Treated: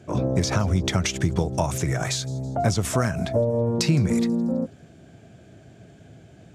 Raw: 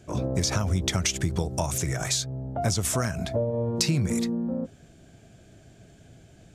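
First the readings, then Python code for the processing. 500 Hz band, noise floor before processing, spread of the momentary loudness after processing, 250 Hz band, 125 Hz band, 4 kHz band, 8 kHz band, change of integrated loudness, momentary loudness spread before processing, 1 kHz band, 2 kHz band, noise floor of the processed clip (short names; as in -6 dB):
+5.0 dB, -54 dBFS, 5 LU, +5.0 dB, +4.0 dB, -0.5 dB, -2.5 dB, +3.0 dB, 5 LU, +4.5 dB, +3.0 dB, -50 dBFS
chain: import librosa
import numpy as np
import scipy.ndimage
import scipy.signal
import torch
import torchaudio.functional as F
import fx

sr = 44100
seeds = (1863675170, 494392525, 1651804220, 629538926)

y = scipy.signal.sosfilt(scipy.signal.butter(2, 82.0, 'highpass', fs=sr, output='sos'), x)
y = fx.high_shelf(y, sr, hz=3900.0, db=-10.0)
y = fx.echo_wet_highpass(y, sr, ms=163, feedback_pct=50, hz=4900.0, wet_db=-19.0)
y = y * 10.0 ** (5.0 / 20.0)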